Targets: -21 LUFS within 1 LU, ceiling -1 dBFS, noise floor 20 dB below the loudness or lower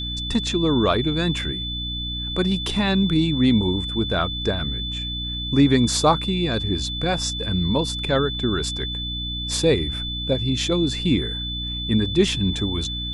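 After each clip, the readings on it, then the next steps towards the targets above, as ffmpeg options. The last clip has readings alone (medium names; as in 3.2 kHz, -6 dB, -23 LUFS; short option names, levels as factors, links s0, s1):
hum 60 Hz; highest harmonic 300 Hz; hum level -29 dBFS; steady tone 3.5 kHz; tone level -28 dBFS; loudness -22.0 LUFS; peak level -4.5 dBFS; loudness target -21.0 LUFS
-> -af "bandreject=f=60:t=h:w=6,bandreject=f=120:t=h:w=6,bandreject=f=180:t=h:w=6,bandreject=f=240:t=h:w=6,bandreject=f=300:t=h:w=6"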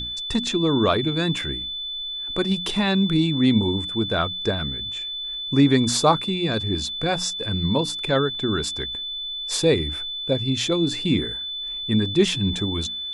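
hum not found; steady tone 3.5 kHz; tone level -28 dBFS
-> -af "bandreject=f=3500:w=30"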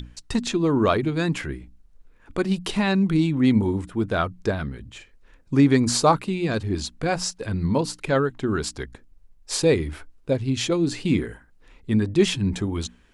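steady tone not found; loudness -23.5 LUFS; peak level -4.5 dBFS; loudness target -21.0 LUFS
-> -af "volume=1.33"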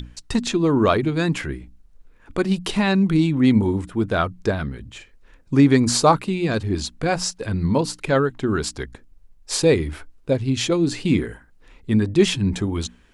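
loudness -21.0 LUFS; peak level -2.0 dBFS; noise floor -52 dBFS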